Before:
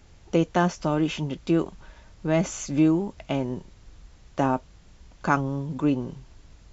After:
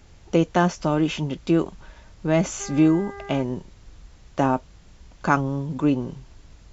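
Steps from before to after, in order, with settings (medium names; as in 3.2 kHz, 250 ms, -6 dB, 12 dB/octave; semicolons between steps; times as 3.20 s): 2.59–3.41 s: mains buzz 400 Hz, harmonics 5, -41 dBFS -4 dB/octave; trim +2.5 dB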